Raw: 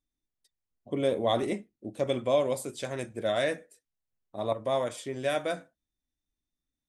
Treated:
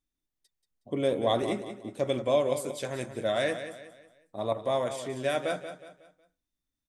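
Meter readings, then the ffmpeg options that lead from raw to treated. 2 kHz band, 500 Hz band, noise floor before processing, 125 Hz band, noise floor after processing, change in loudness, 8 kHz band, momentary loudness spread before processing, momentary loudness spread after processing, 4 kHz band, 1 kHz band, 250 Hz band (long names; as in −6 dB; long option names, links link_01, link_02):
+0.5 dB, +0.5 dB, below −85 dBFS, +0.5 dB, below −85 dBFS, +0.5 dB, +0.5 dB, 10 LU, 14 LU, +0.5 dB, +0.5 dB, +0.5 dB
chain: -af "aecho=1:1:183|366|549|732:0.299|0.113|0.0431|0.0164"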